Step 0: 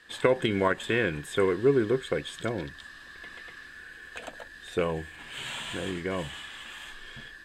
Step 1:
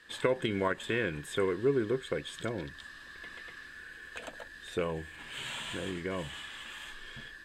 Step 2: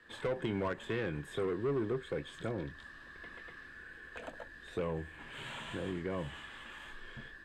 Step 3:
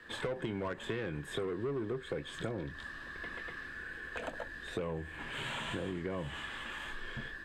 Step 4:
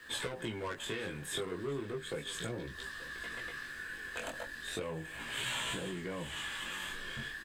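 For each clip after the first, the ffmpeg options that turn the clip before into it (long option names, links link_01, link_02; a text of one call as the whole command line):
ffmpeg -i in.wav -filter_complex "[0:a]bandreject=frequency=740:width=12,asplit=2[link_01][link_02];[link_02]acompressor=threshold=-35dB:ratio=6,volume=-3dB[link_03];[link_01][link_03]amix=inputs=2:normalize=0,volume=-6.5dB" out.wav
ffmpeg -i in.wav -filter_complex "[0:a]acrossover=split=130|2500[link_01][link_02][link_03];[link_02]asoftclip=type=tanh:threshold=-30.5dB[link_04];[link_03]flanger=delay=19.5:depth=6.5:speed=2.7[link_05];[link_01][link_04][link_05]amix=inputs=3:normalize=0,highshelf=frequency=2300:gain=-10,volume=1dB" out.wav
ffmpeg -i in.wav -af "acompressor=threshold=-41dB:ratio=5,volume=6.5dB" out.wav
ffmpeg -i in.wav -af "flanger=delay=16:depth=6.3:speed=0.35,crystalizer=i=4.5:c=0,aecho=1:1:883:0.133" out.wav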